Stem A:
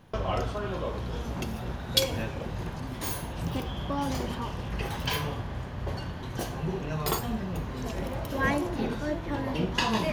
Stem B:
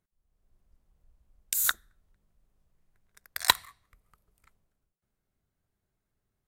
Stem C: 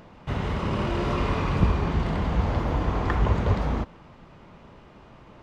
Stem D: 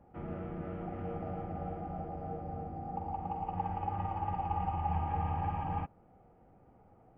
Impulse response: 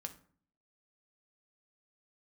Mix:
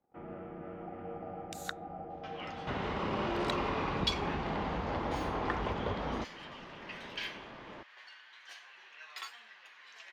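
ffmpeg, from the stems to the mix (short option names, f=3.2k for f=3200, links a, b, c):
-filter_complex "[0:a]highpass=f=1.9k:t=q:w=1.8,flanger=delay=8.1:depth=1.6:regen=47:speed=0.85:shape=sinusoidal,adelay=2100,volume=-5.5dB[a];[1:a]volume=-8dB[b];[2:a]adelay=2400,volume=2.5dB[c];[3:a]agate=range=-18dB:threshold=-58dB:ratio=16:detection=peak,volume=-1.5dB[d];[b][c][d]amix=inputs=3:normalize=0,acompressor=threshold=-33dB:ratio=2,volume=0dB[e];[a][e]amix=inputs=2:normalize=0,acrossover=split=210 6100:gain=0.251 1 0.0794[f][g][h];[f][g][h]amix=inputs=3:normalize=0"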